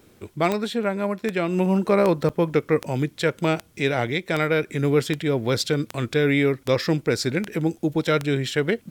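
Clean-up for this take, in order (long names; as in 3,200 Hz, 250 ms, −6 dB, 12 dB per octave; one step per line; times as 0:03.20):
click removal
repair the gap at 0:02.29, 6.7 ms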